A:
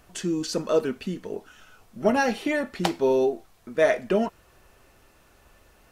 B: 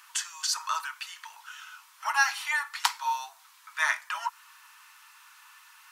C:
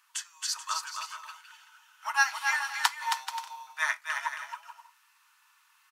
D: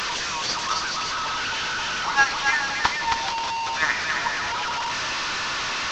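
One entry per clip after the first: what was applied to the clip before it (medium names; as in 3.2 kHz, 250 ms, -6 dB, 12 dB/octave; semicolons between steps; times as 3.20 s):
dynamic bell 2.8 kHz, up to -7 dB, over -45 dBFS, Q 1; Chebyshev high-pass 920 Hz, order 6; trim +8 dB
on a send: bouncing-ball echo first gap 270 ms, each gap 0.6×, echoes 5; on the sum: upward expansion 1.5:1, over -45 dBFS
one-bit delta coder 32 kbps, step -26.5 dBFS; trim +6 dB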